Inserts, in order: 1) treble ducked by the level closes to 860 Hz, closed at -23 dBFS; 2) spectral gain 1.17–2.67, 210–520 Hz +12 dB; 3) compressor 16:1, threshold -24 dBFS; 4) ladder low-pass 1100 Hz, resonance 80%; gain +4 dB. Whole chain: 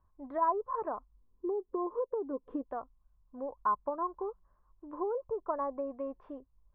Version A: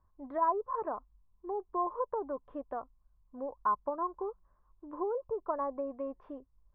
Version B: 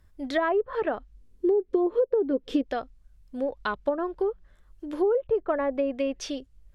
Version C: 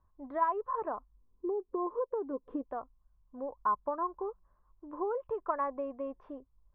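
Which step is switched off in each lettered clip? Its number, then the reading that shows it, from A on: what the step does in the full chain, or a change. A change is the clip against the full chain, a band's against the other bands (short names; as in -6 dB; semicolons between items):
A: 2, 250 Hz band -2.5 dB; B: 4, 1 kHz band -11.5 dB; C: 1, 2 kHz band +4.0 dB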